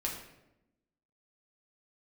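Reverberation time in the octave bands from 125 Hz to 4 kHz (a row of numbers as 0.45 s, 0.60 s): 1.1 s, 1.3 s, 1.0 s, 0.80 s, 0.75 s, 0.60 s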